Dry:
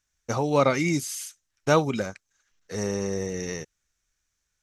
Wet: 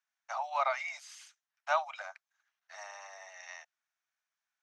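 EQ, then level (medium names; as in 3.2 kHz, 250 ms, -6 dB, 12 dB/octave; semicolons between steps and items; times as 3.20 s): steep high-pass 640 Hz 96 dB/octave; tape spacing loss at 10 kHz 22 dB; treble shelf 8.4 kHz -4.5 dB; -2.0 dB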